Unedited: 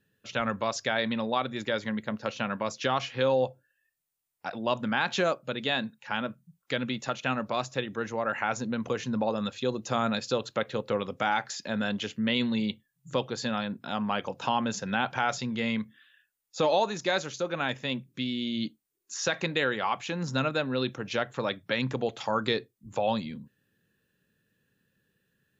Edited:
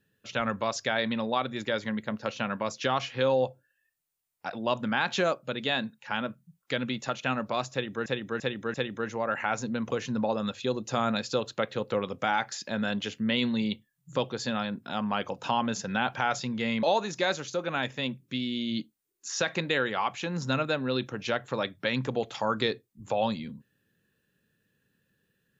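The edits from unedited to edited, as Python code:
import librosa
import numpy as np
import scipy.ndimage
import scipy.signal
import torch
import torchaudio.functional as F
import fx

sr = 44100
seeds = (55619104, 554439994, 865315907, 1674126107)

y = fx.edit(x, sr, fx.repeat(start_s=7.72, length_s=0.34, count=4),
    fx.cut(start_s=15.81, length_s=0.88), tone=tone)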